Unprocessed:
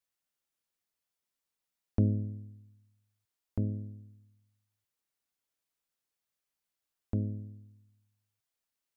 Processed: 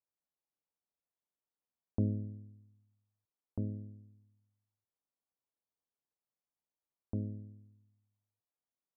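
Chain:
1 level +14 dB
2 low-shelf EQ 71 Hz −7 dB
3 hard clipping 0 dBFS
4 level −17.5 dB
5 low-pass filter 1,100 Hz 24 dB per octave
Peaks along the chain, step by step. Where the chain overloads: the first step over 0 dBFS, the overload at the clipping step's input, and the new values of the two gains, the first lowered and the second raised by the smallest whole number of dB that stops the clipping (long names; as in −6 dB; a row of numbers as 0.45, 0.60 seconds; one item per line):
−1.0, −2.5, −2.5, −20.0, −20.0 dBFS
no step passes full scale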